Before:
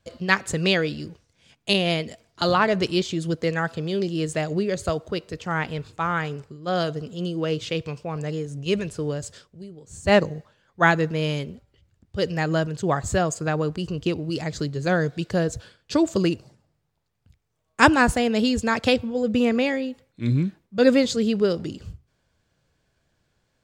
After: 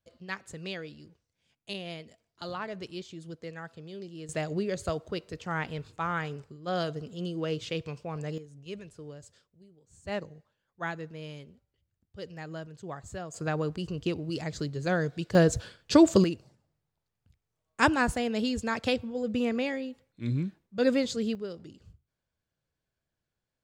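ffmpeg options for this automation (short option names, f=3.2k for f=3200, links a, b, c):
-af "asetnsamples=n=441:p=0,asendcmd='4.29 volume volume -6.5dB;8.38 volume volume -17dB;13.34 volume volume -6dB;15.35 volume volume 2dB;16.24 volume volume -8dB;21.35 volume volume -16.5dB',volume=-17dB"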